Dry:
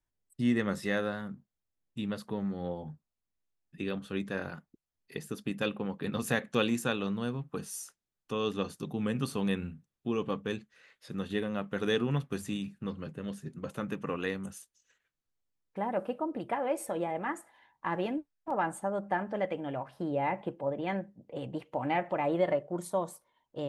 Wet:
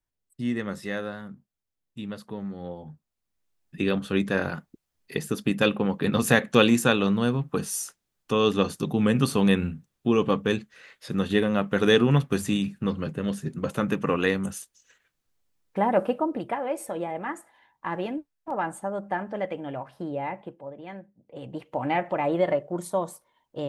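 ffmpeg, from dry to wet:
-af "volume=11.9,afade=t=in:st=2.86:d=0.98:silence=0.298538,afade=t=out:st=15.99:d=0.61:silence=0.398107,afade=t=out:st=19.92:d=0.77:silence=0.354813,afade=t=in:st=21.2:d=0.59:silence=0.266073"

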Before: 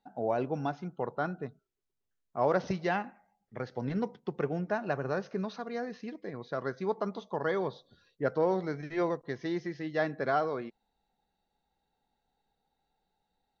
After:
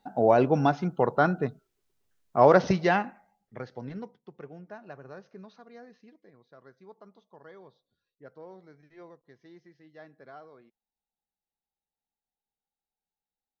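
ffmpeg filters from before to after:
-af "volume=3.16,afade=t=out:st=2.39:d=1.23:silence=0.266073,afade=t=out:st=3.62:d=0.57:silence=0.281838,afade=t=out:st=5.87:d=0.58:silence=0.473151"

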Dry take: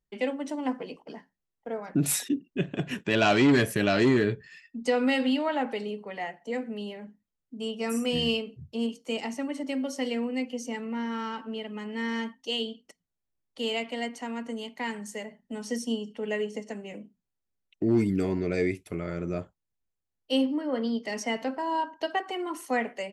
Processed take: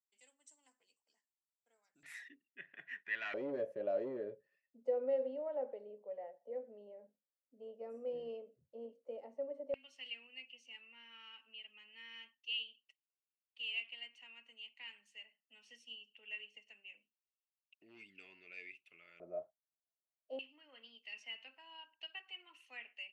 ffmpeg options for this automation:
-af "asetnsamples=n=441:p=0,asendcmd='2.03 bandpass f 1900;3.34 bandpass f 550;9.74 bandpass f 2700;19.2 bandpass f 650;20.39 bandpass f 2700',bandpass=f=7600:t=q:w=12:csg=0"

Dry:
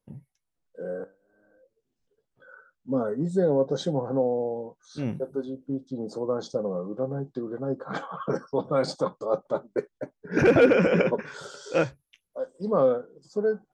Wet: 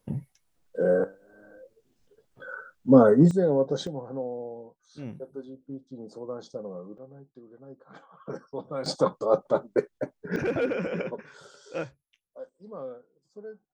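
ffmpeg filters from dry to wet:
-af "asetnsamples=n=441:p=0,asendcmd='3.31 volume volume -0.5dB;3.87 volume volume -8.5dB;6.98 volume volume -17.5dB;8.26 volume volume -9dB;8.86 volume volume 3.5dB;10.36 volume volume -9.5dB;12.49 volume volume -17dB',volume=3.55"

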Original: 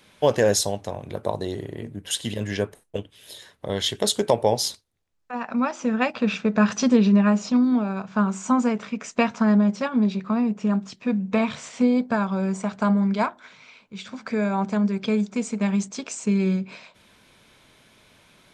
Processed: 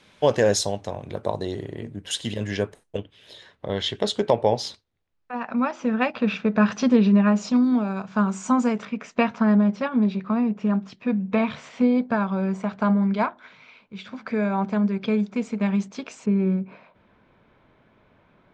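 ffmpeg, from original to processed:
-af "asetnsamples=n=441:p=0,asendcmd='2.97 lowpass f 3900;7.36 lowpass f 8800;8.85 lowpass f 3500;16.26 lowpass f 1400',lowpass=7300"

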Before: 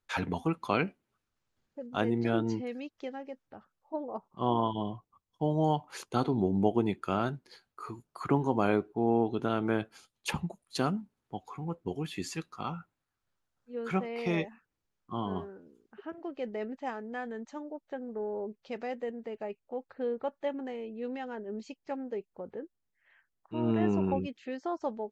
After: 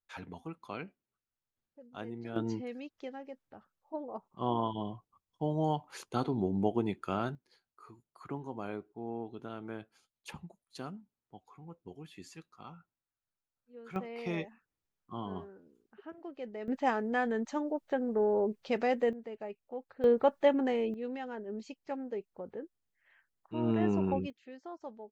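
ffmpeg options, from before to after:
-af "asetnsamples=n=441:p=0,asendcmd='2.36 volume volume -3.5dB;7.35 volume volume -13dB;13.96 volume volume -5.5dB;16.68 volume volume 7dB;19.13 volume volume -3.5dB;20.04 volume volume 8dB;20.94 volume volume -1.5dB;24.3 volume volume -11dB',volume=0.224"

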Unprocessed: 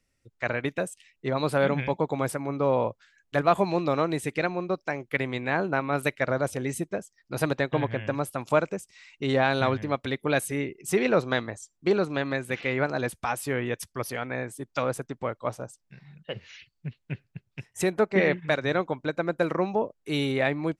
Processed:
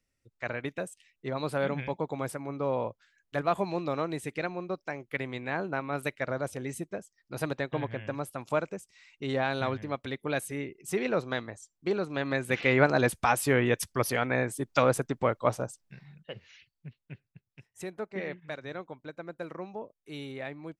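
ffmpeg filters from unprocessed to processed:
-af "volume=1.58,afade=t=in:st=12.08:d=0.67:silence=0.316228,afade=t=out:st=15.59:d=0.74:silence=0.281838,afade=t=out:st=16.33:d=1.15:silence=0.473151"

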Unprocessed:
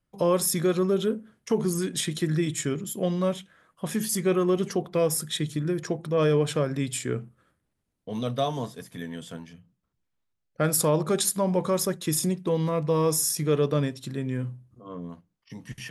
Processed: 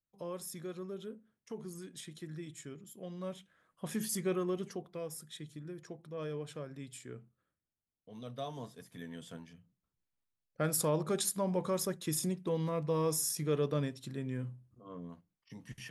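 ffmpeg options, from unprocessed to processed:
-af "volume=1.19,afade=t=in:st=3.06:d=0.98:silence=0.281838,afade=t=out:st=4.04:d=0.95:silence=0.316228,afade=t=in:st=8.13:d=1.15:silence=0.334965"

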